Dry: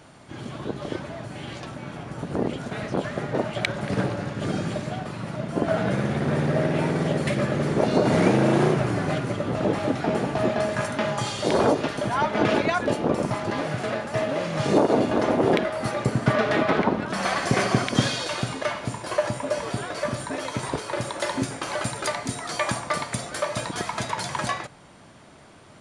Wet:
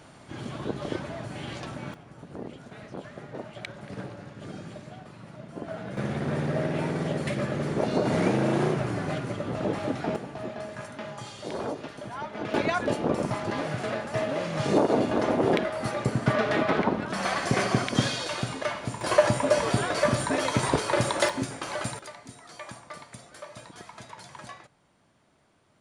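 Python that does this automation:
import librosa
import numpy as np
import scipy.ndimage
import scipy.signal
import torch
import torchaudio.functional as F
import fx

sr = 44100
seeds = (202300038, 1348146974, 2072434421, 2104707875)

y = fx.gain(x, sr, db=fx.steps((0.0, -1.0), (1.94, -13.0), (5.97, -5.0), (10.16, -12.5), (12.54, -3.0), (19.01, 4.0), (21.29, -4.0), (21.99, -16.0)))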